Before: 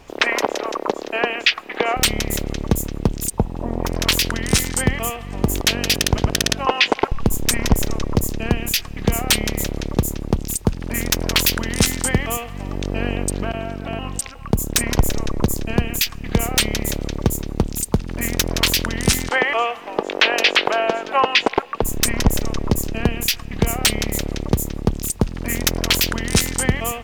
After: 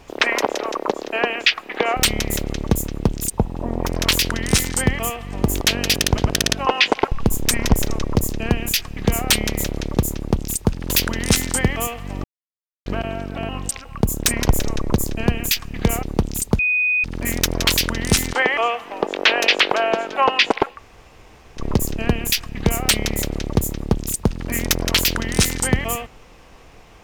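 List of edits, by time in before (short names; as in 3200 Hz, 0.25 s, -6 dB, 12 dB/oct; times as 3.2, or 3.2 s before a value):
10.9–11.4 cut
12.74–13.36 mute
16.53–17.44 cut
18 add tone 2490 Hz -15.5 dBFS 0.45 s
21.71–22.56 room tone, crossfade 0.10 s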